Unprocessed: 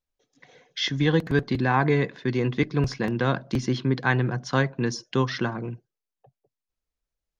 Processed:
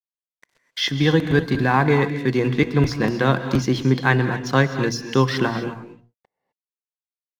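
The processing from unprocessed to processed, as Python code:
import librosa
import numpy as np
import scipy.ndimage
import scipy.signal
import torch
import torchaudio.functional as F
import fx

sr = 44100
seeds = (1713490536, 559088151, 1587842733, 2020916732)

p1 = fx.rider(x, sr, range_db=3, speed_s=0.5)
p2 = x + (p1 * librosa.db_to_amplitude(0.5))
p3 = fx.hum_notches(p2, sr, base_hz=60, count=4)
p4 = np.sign(p3) * np.maximum(np.abs(p3) - 10.0 ** (-41.5 / 20.0), 0.0)
p5 = fx.wow_flutter(p4, sr, seeds[0], rate_hz=2.1, depth_cents=20.0)
p6 = fx.rev_gated(p5, sr, seeds[1], gate_ms=280, shape='rising', drr_db=9.5)
y = p6 * librosa.db_to_amplitude(-1.0)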